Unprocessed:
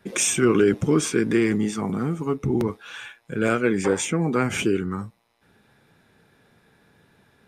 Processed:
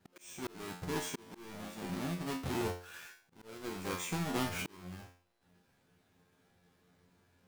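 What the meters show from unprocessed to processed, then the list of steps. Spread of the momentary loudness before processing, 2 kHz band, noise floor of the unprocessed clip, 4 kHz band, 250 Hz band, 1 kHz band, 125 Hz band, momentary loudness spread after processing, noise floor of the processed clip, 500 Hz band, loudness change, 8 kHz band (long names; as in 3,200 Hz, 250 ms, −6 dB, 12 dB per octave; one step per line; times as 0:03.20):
14 LU, −15.0 dB, −64 dBFS, −11.0 dB, −18.0 dB, −11.0 dB, −15.0 dB, 15 LU, −73 dBFS, −19.5 dB, −16.5 dB, −18.0 dB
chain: each half-wave held at its own peak
tuned comb filter 89 Hz, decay 0.42 s, harmonics all, mix 90%
volume swells 703 ms
level −6 dB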